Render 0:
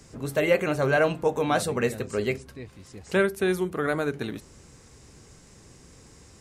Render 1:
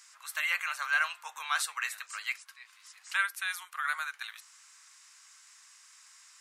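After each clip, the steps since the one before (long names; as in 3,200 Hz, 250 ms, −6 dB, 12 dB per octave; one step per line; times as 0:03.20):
Butterworth high-pass 1,100 Hz 36 dB per octave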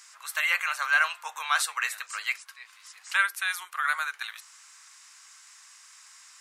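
low-shelf EQ 460 Hz +9 dB
level +4.5 dB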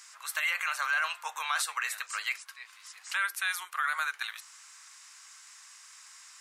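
brickwall limiter −19.5 dBFS, peak gain reduction 9 dB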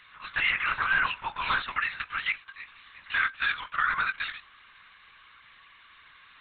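linear-prediction vocoder at 8 kHz whisper
level +4 dB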